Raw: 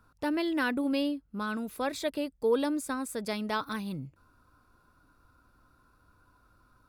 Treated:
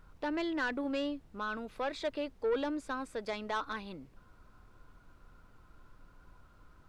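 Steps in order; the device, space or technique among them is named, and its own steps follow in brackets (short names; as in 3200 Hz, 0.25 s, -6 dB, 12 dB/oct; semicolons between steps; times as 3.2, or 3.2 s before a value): aircraft cabin announcement (BPF 360–3700 Hz; soft clip -26 dBFS, distortion -14 dB; brown noise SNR 18 dB)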